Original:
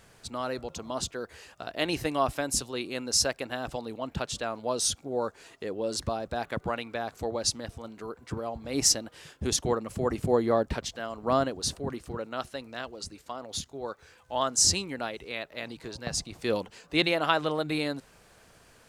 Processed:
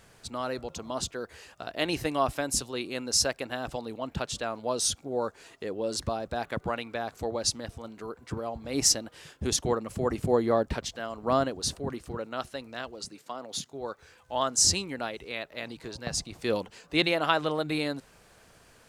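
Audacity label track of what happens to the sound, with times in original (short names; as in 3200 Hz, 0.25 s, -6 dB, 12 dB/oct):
13.060000	13.730000	HPF 130 Hz 24 dB/oct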